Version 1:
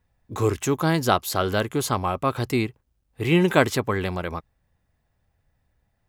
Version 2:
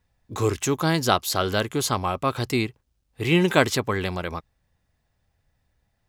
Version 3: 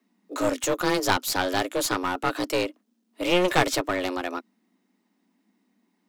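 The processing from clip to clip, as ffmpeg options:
-af "equalizer=f=4900:w=0.65:g=5.5,volume=0.891"
-af "afreqshift=180,aeval=exprs='clip(val(0),-1,0.0631)':c=same"

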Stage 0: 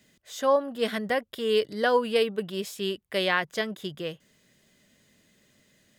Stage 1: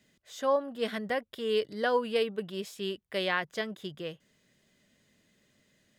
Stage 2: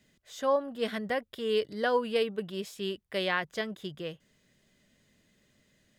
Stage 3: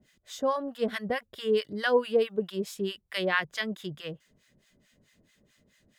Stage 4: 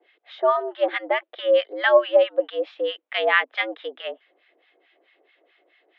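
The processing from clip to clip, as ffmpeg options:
-af "highshelf=f=8300:g=-6,volume=0.596"
-af "lowshelf=f=69:g=9.5"
-filter_complex "[0:a]acrossover=split=880[s0][s1];[s0]aeval=exprs='val(0)*(1-1/2+1/2*cos(2*PI*4.6*n/s))':c=same[s2];[s1]aeval=exprs='val(0)*(1-1/2-1/2*cos(2*PI*4.6*n/s))':c=same[s3];[s2][s3]amix=inputs=2:normalize=0,volume=2"
-af "highpass=f=290:t=q:w=0.5412,highpass=f=290:t=q:w=1.307,lowpass=f=3200:t=q:w=0.5176,lowpass=f=3200:t=q:w=0.7071,lowpass=f=3200:t=q:w=1.932,afreqshift=110,volume=2.51"

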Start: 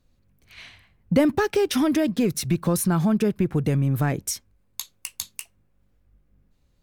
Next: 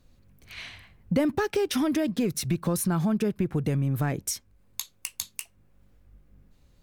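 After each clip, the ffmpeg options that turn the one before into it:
-af "acompressor=threshold=0.00501:ratio=1.5,volume=1.88"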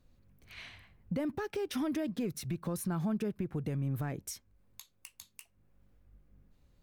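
-af "alimiter=limit=0.1:level=0:latency=1:release=301,equalizer=f=7300:t=o:w=2.5:g=-4,volume=0.501"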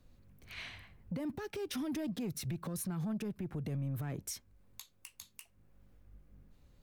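-filter_complex "[0:a]acrossover=split=240|3000[s0][s1][s2];[s1]acompressor=threshold=0.00891:ratio=2.5[s3];[s0][s3][s2]amix=inputs=3:normalize=0,alimiter=level_in=2.51:limit=0.0631:level=0:latency=1:release=96,volume=0.398,asoftclip=type=tanh:threshold=0.0224,volume=1.41"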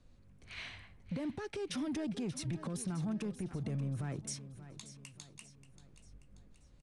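-af "aecho=1:1:583|1166|1749|2332|2915:0.211|0.101|0.0487|0.0234|0.0112,aresample=22050,aresample=44100"

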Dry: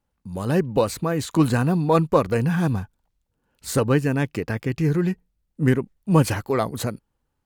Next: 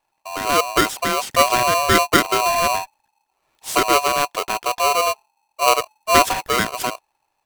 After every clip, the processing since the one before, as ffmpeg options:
-af "aeval=exprs='val(0)*sgn(sin(2*PI*860*n/s))':c=same,volume=1.33"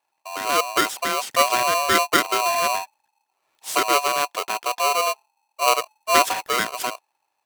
-af "highpass=f=410:p=1,volume=0.794"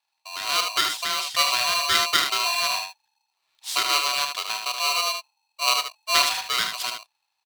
-filter_complex "[0:a]equalizer=f=250:t=o:w=1:g=-9,equalizer=f=500:t=o:w=1:g=-10,equalizer=f=4000:t=o:w=1:g=11,asplit=2[s0][s1];[s1]aecho=0:1:33|76:0.188|0.501[s2];[s0][s2]amix=inputs=2:normalize=0,volume=0.562"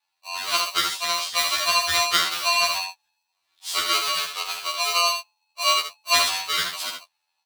-af "afftfilt=real='re*2*eq(mod(b,4),0)':imag='im*2*eq(mod(b,4),0)':win_size=2048:overlap=0.75,volume=1.41"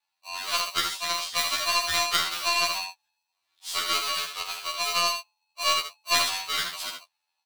-af "aeval=exprs='0.891*(cos(1*acos(clip(val(0)/0.891,-1,1)))-cos(1*PI/2))+0.126*(cos(2*acos(clip(val(0)/0.891,-1,1)))-cos(2*PI/2))+0.141*(cos(4*acos(clip(val(0)/0.891,-1,1)))-cos(4*PI/2))':c=same,volume=0.631"

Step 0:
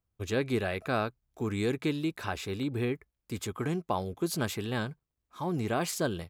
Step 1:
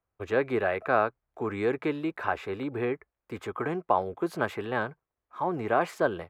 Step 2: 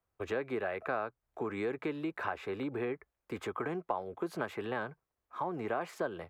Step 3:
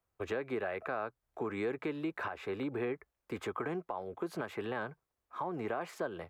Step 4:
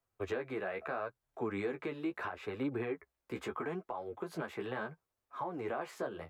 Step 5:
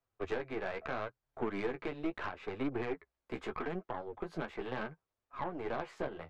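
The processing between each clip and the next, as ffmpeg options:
-filter_complex "[0:a]acrossover=split=400 2100:gain=0.2 1 0.0708[s0][s1][s2];[s0][s1][s2]amix=inputs=3:normalize=0,volume=2.51"
-filter_complex "[0:a]acrossover=split=130|2700[s0][s1][s2];[s0]alimiter=level_in=16.8:limit=0.0631:level=0:latency=1,volume=0.0596[s3];[s3][s1][s2]amix=inputs=3:normalize=0,acompressor=threshold=0.02:ratio=3"
-af "alimiter=level_in=1.19:limit=0.0631:level=0:latency=1:release=128,volume=0.841"
-af "flanger=delay=6.9:depth=9.3:regen=15:speed=0.75:shape=triangular,volume=1.26"
-af "aeval=exprs='0.0631*(cos(1*acos(clip(val(0)/0.0631,-1,1)))-cos(1*PI/2))+0.00631*(cos(3*acos(clip(val(0)/0.0631,-1,1)))-cos(3*PI/2))+0.00562*(cos(6*acos(clip(val(0)/0.0631,-1,1)))-cos(6*PI/2))':c=same,adynamicsmooth=sensitivity=4:basefreq=5900,volume=1.26"

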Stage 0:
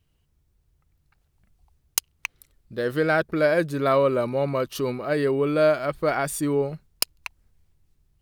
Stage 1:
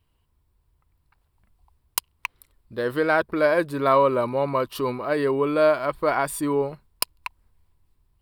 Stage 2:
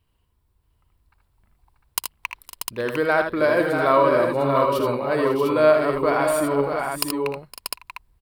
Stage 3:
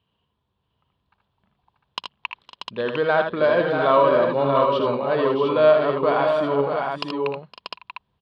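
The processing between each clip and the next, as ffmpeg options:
-af "equalizer=f=160:t=o:w=0.33:g=-8,equalizer=f=1000:t=o:w=0.33:g=11,equalizer=f=6300:t=o:w=0.33:g=-10"
-af "aecho=1:1:60|78|512|553|636|702:0.178|0.473|0.112|0.15|0.447|0.531"
-filter_complex "[0:a]asplit=2[s0][s1];[s1]asoftclip=type=tanh:threshold=0.168,volume=0.282[s2];[s0][s2]amix=inputs=2:normalize=0,highpass=150,equalizer=f=180:t=q:w=4:g=5,equalizer=f=320:t=q:w=4:g=-7,equalizer=f=1400:t=q:w=4:g=-3,equalizer=f=2100:t=q:w=4:g=-8,equalizer=f=3300:t=q:w=4:g=6,lowpass=f=3800:w=0.5412,lowpass=f=3800:w=1.3066"

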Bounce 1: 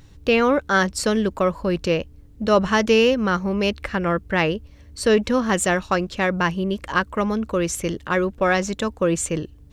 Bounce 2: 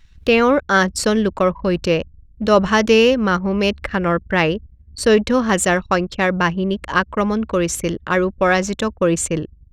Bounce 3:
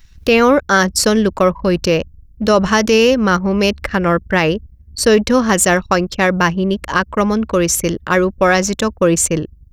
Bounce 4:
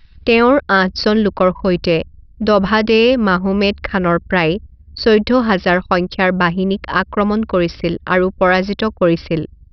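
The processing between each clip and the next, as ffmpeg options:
-filter_complex "[0:a]anlmdn=3.98,acrossover=split=1700[s0][s1];[s1]acompressor=mode=upward:threshold=0.0158:ratio=2.5[s2];[s0][s2]amix=inputs=2:normalize=0,volume=1.5"
-af "aexciter=amount=2.6:drive=1.2:freq=4800,alimiter=level_in=1.68:limit=0.891:release=50:level=0:latency=1,volume=0.891"
-af "aresample=11025,aresample=44100"

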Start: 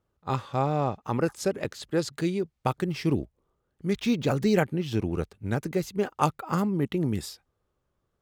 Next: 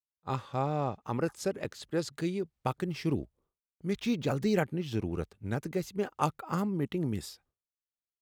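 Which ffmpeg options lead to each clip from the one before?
-af "agate=range=0.0224:threshold=0.00158:ratio=3:detection=peak,volume=0.562"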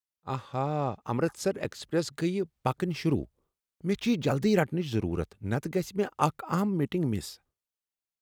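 -af "dynaudnorm=f=130:g=13:m=1.5"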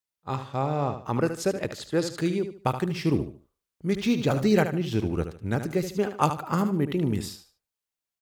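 -af "aecho=1:1:75|150|225:0.335|0.0971|0.0282,volume=1.33"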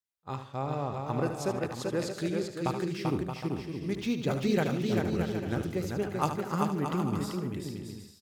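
-af "aecho=1:1:390|624|764.4|848.6|899.2:0.631|0.398|0.251|0.158|0.1,volume=0.473"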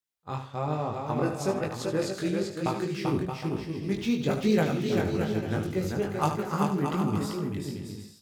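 -af "flanger=delay=18.5:depth=3.1:speed=1.1,volume=1.88"

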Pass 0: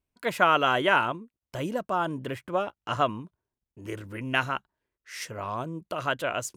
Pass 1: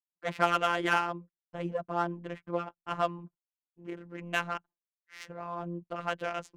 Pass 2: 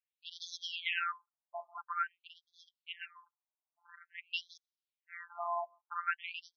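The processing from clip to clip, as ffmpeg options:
-af "agate=range=0.0224:threshold=0.00708:ratio=3:detection=peak,afftfilt=real='hypot(re,im)*cos(PI*b)':imag='0':win_size=1024:overlap=0.75,adynamicsmooth=sensitivity=3:basefreq=1700,volume=0.891"
-af "asoftclip=type=tanh:threshold=0.178,afftfilt=real='re*between(b*sr/1024,800*pow(4700/800,0.5+0.5*sin(2*PI*0.49*pts/sr))/1.41,800*pow(4700/800,0.5+0.5*sin(2*PI*0.49*pts/sr))*1.41)':imag='im*between(b*sr/1024,800*pow(4700/800,0.5+0.5*sin(2*PI*0.49*pts/sr))/1.41,800*pow(4700/800,0.5+0.5*sin(2*PI*0.49*pts/sr))*1.41)':win_size=1024:overlap=0.75,volume=1.58"

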